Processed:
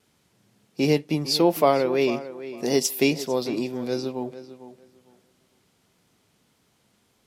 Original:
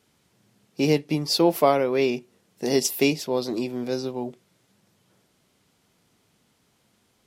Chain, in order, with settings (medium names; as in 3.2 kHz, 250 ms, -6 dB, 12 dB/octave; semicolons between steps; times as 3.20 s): tape echo 452 ms, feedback 21%, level -13 dB, low-pass 3.3 kHz; wow and flutter 29 cents